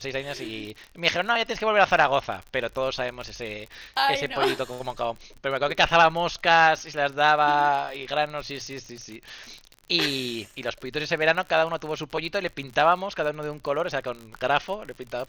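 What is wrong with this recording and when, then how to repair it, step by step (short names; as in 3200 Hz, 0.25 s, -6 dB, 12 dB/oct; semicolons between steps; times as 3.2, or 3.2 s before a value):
crackle 51/s -33 dBFS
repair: de-click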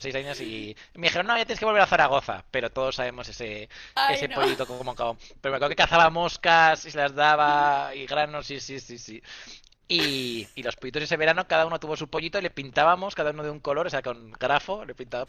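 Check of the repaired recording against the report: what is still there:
none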